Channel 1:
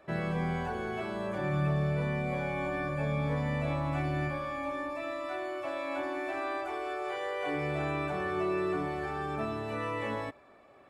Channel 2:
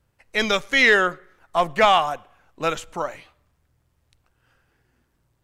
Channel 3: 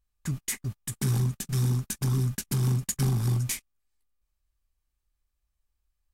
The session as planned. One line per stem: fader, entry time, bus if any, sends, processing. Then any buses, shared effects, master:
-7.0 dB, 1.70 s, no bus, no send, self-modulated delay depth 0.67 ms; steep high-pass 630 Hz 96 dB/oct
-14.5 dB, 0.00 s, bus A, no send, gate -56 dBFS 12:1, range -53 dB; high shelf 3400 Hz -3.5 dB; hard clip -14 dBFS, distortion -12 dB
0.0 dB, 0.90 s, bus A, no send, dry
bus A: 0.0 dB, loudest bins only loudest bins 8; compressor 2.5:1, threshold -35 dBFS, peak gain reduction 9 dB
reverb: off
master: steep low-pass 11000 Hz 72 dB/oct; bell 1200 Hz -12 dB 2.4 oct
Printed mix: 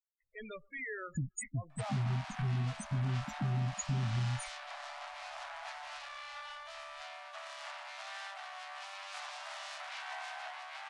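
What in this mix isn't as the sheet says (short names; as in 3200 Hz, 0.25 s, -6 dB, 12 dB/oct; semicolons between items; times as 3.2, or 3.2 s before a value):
stem 2 -14.5 dB -> -21.0 dB; master: missing bell 1200 Hz -12 dB 2.4 oct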